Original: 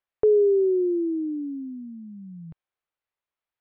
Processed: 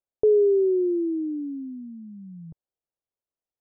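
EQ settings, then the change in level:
Chebyshev low-pass filter 550 Hz, order 2
0.0 dB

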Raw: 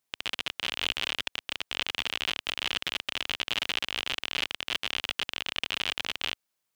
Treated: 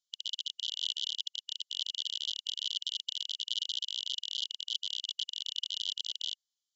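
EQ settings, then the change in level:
linear-phase brick-wall band-pass 2,900–7,500 Hz
−1.0 dB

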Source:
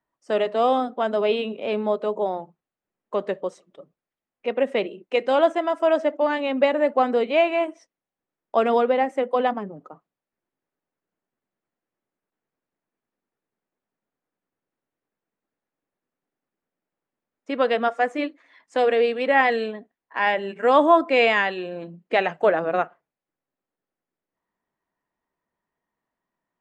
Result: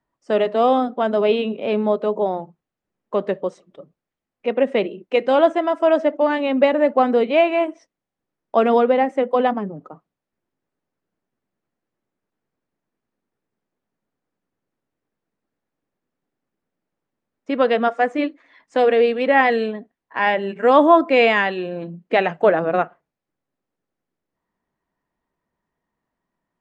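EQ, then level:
high-frequency loss of the air 51 metres
low-shelf EQ 250 Hz +7.5 dB
+2.5 dB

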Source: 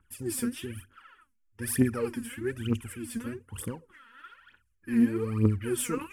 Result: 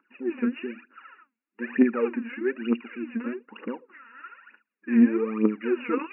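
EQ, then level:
linear-phase brick-wall band-pass 200–2,900 Hz
+5.5 dB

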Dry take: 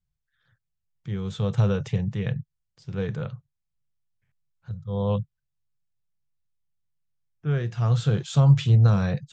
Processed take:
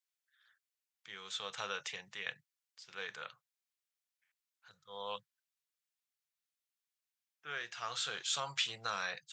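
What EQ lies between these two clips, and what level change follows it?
high-pass filter 1,500 Hz 12 dB per octave
+2.0 dB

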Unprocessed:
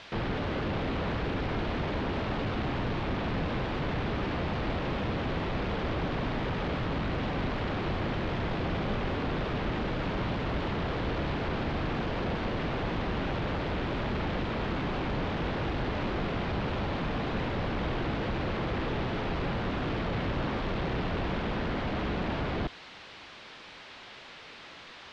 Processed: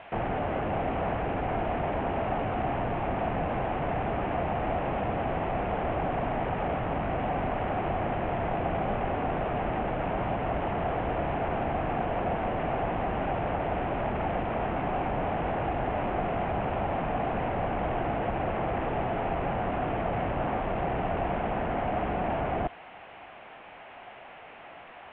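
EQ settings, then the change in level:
Butterworth low-pass 2,900 Hz 48 dB per octave
parametric band 720 Hz +13 dB 0.6 octaves
−1.5 dB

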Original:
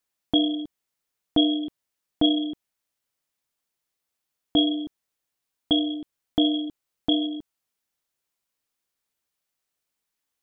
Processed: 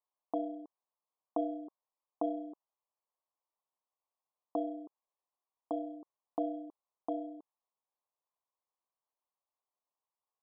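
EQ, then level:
high-pass filter 810 Hz 12 dB per octave
elliptic low-pass filter 1,100 Hz
+2.0 dB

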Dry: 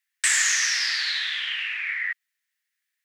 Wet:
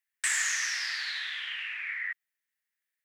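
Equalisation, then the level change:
parametric band 4,500 Hz −6 dB 2 octaves
−4.0 dB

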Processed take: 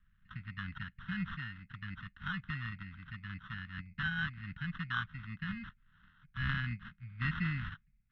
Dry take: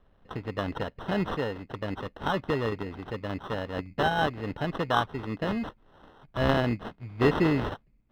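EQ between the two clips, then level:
elliptic band-stop filter 180–1,500 Hz, stop band 80 dB
high-frequency loss of the air 180 metres
bass and treble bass −5 dB, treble −11 dB
−1.0 dB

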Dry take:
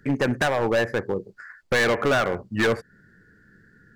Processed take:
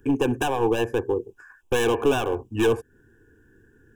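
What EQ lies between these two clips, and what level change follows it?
Butterworth band-reject 2,000 Hz, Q 2
phaser with its sweep stopped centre 900 Hz, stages 8
dynamic equaliser 1,100 Hz, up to −3 dB, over −43 dBFS, Q 0.77
+5.5 dB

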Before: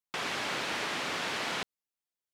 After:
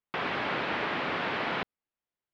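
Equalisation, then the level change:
high-frequency loss of the air 360 metres
high-shelf EQ 8,900 Hz −4.5 dB
+6.0 dB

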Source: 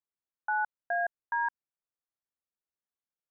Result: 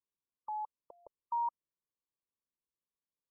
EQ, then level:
Butterworth band-reject 720 Hz, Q 2
linear-phase brick-wall low-pass 1,200 Hz
+1.0 dB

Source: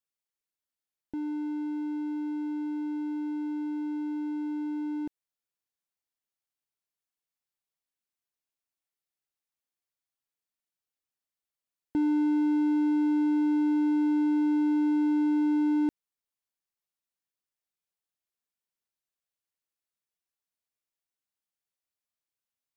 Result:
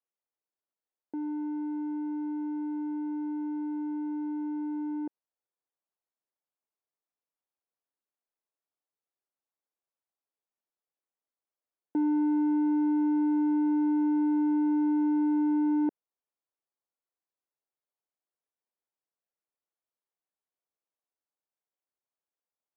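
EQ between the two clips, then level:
high-pass filter 340 Hz
low-pass filter 1,000 Hz 12 dB per octave
+3.5 dB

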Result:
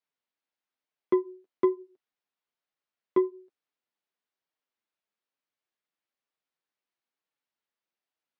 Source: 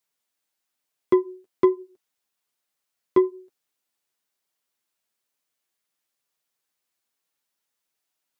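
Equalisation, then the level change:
high-pass filter 150 Hz
high-frequency loss of the air 190 metres
−5.0 dB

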